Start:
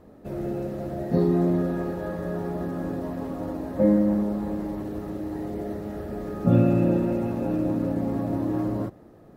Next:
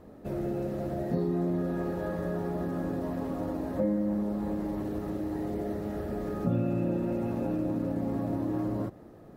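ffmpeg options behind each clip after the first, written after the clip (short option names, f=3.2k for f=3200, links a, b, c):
-af "acompressor=threshold=-29dB:ratio=2.5"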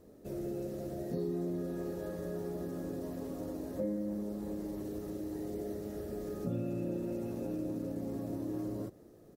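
-af "firequalizer=gain_entry='entry(230,0);entry(410,5);entry(810,-5);entry(5800,11)':delay=0.05:min_phase=1,volume=-8.5dB"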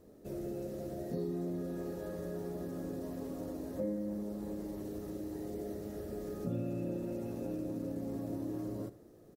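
-af "aecho=1:1:76:0.158,volume=-1dB"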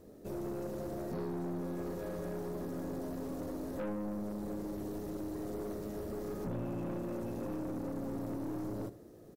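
-af "aeval=exprs='(tanh(89.1*val(0)+0.35)-tanh(0.35))/89.1':c=same,volume=4.5dB"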